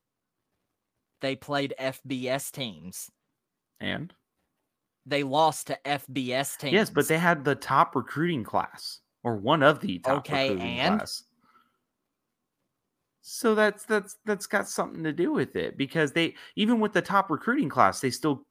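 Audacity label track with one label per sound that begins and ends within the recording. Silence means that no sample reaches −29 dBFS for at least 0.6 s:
1.240000	3.020000	sound
3.820000	4.030000	sound
5.120000	11.160000	sound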